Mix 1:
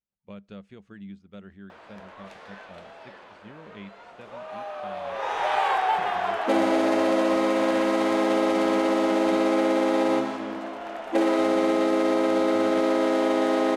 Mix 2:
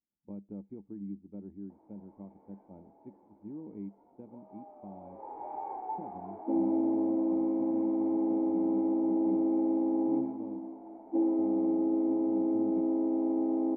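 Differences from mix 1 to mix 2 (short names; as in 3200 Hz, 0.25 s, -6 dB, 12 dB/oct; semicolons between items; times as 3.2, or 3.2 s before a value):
speech +10.0 dB; master: add vocal tract filter u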